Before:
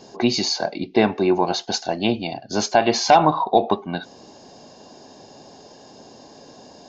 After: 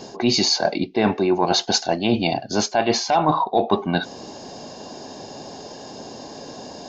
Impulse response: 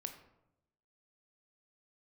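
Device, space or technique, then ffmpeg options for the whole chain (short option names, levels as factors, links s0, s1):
compression on the reversed sound: -af "areverse,acompressor=threshold=0.0708:ratio=10,areverse,volume=2.51"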